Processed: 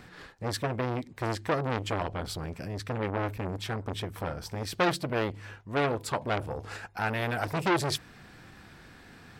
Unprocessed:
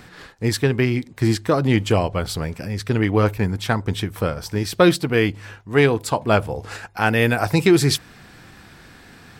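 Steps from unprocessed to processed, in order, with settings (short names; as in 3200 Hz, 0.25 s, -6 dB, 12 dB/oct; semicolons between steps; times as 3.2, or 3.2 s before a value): high shelf 4500 Hz -4.5 dB; core saturation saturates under 1900 Hz; gain -5.5 dB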